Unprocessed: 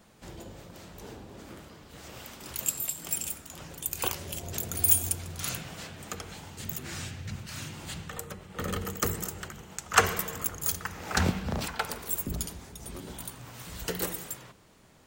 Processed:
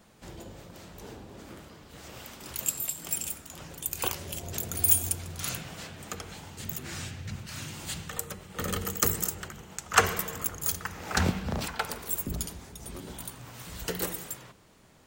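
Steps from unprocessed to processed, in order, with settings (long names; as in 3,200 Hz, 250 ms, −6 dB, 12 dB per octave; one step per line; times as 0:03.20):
0:07.68–0:09.35: high-shelf EQ 3,800 Hz +7 dB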